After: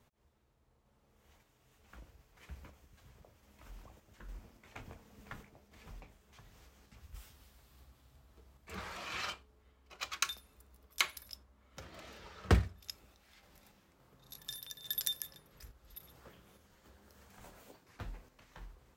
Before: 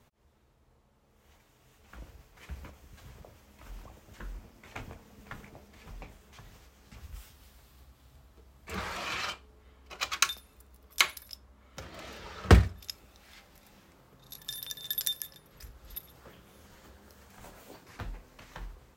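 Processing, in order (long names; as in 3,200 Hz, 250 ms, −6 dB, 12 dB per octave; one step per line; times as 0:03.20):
sample-and-hold tremolo
level −3.5 dB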